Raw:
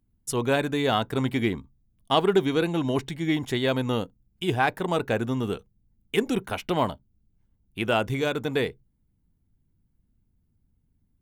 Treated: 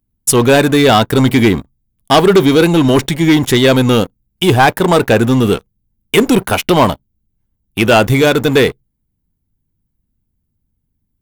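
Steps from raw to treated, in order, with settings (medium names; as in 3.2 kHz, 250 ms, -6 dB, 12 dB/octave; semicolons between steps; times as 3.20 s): treble shelf 9.6 kHz +10 dB; waveshaping leveller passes 3; trim +6 dB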